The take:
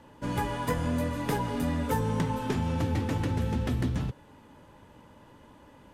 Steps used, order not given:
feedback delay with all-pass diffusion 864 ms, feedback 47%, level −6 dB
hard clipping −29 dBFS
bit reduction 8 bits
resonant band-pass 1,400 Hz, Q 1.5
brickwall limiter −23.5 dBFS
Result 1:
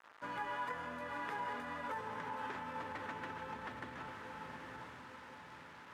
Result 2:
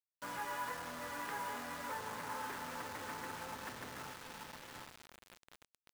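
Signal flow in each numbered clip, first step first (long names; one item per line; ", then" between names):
feedback delay with all-pass diffusion, then bit reduction, then brickwall limiter, then resonant band-pass, then hard clipping
brickwall limiter, then feedback delay with all-pass diffusion, then hard clipping, then resonant band-pass, then bit reduction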